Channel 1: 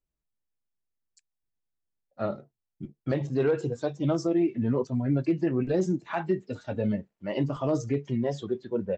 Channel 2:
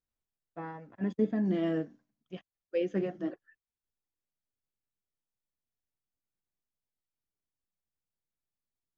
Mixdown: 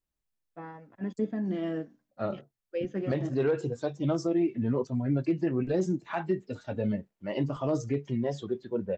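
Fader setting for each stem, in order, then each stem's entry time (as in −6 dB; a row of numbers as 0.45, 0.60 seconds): −2.0, −2.0 decibels; 0.00, 0.00 seconds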